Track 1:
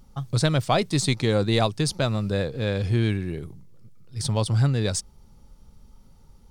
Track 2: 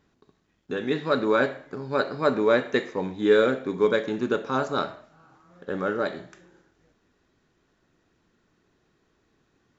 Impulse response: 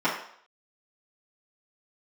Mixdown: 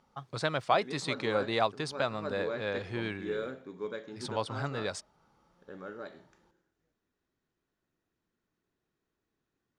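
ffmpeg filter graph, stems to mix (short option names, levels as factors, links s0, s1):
-filter_complex "[0:a]bandpass=f=1200:t=q:w=0.73:csg=0,volume=0.841[s0];[1:a]volume=0.15[s1];[s0][s1]amix=inputs=2:normalize=0"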